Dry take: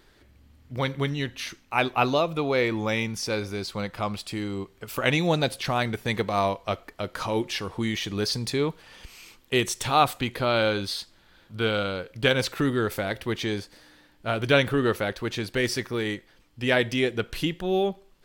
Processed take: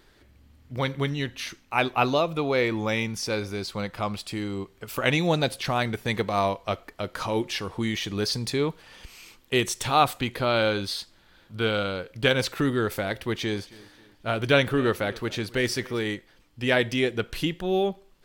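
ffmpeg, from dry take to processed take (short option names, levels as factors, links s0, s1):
-filter_complex "[0:a]asettb=1/sr,asplit=3[s0][s1][s2];[s0]atrim=end=13.164[s3];[s1]atrim=start=13.16:end=15.99,asetpts=PTS-STARTPTS,afade=t=in:d=0.004:c=qsin,afade=t=out:st=2.826:d=0.004:c=qsin,aecho=1:1:269|538|807:0.0841|0.0328|0.0128,atrim=end_sample=124803[s4];[s2]atrim=start=15.986[s5];[s3][s4]acrossfade=d=0.004:c1=hsin:c2=qsin[s6];[s6][s5]acrossfade=d=0.004:c1=qsin:c2=hsin"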